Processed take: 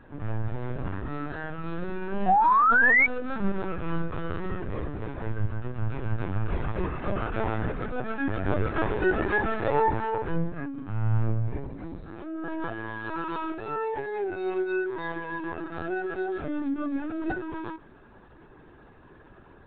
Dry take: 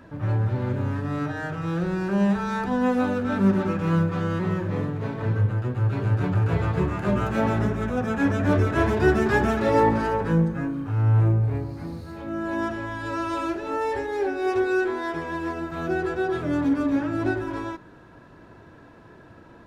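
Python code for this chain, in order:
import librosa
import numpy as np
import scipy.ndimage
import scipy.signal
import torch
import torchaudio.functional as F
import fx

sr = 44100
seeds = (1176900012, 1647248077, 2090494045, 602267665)

y = fx.spec_paint(x, sr, seeds[0], shape='rise', start_s=2.27, length_s=0.79, low_hz=710.0, high_hz=2300.0, level_db=-16.0)
y = fx.lpc_vocoder(y, sr, seeds[1], excitation='pitch_kept', order=16)
y = fx.dynamic_eq(y, sr, hz=220.0, q=1.2, threshold_db=-34.0, ratio=4.0, max_db=-5)
y = y * 10.0 ** (-3.5 / 20.0)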